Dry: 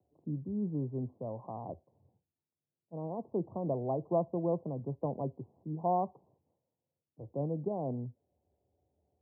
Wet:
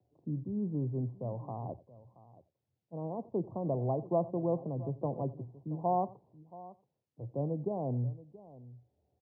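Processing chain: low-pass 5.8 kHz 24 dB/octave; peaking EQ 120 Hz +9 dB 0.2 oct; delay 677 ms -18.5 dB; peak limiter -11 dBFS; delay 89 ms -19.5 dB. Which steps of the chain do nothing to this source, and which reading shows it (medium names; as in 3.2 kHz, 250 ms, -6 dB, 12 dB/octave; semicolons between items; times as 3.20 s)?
low-pass 5.8 kHz: input has nothing above 1.1 kHz; peak limiter -11 dBFS: peak at its input -18.0 dBFS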